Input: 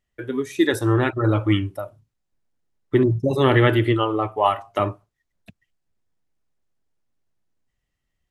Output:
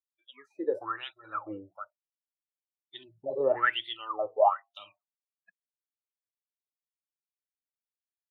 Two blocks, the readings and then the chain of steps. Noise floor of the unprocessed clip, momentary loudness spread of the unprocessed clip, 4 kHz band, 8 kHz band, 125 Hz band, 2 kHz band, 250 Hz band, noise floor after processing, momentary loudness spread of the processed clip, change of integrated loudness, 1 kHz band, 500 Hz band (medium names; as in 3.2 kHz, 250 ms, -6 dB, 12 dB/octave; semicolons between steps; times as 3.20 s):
-78 dBFS, 11 LU, -7.5 dB, no reading, -36.5 dB, -7.5 dB, -23.5 dB, under -85 dBFS, 24 LU, -9.5 dB, -6.5 dB, -9.0 dB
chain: wah-wah 1.1 Hz 480–3600 Hz, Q 17; spectral noise reduction 30 dB; trim +6 dB